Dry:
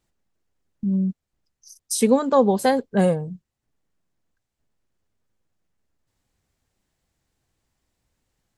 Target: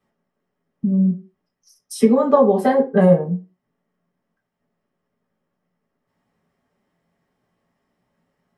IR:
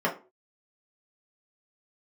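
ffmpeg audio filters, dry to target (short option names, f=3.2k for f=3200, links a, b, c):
-filter_complex "[0:a]acompressor=threshold=-19dB:ratio=6[a];[1:a]atrim=start_sample=2205[b];[a][b]afir=irnorm=-1:irlink=0,volume=-6dB"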